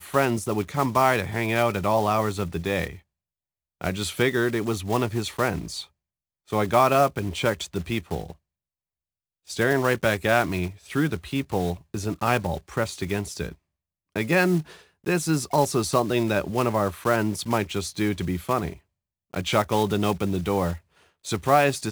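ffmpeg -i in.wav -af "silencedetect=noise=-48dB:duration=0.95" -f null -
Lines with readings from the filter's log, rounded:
silence_start: 8.36
silence_end: 9.47 | silence_duration: 1.11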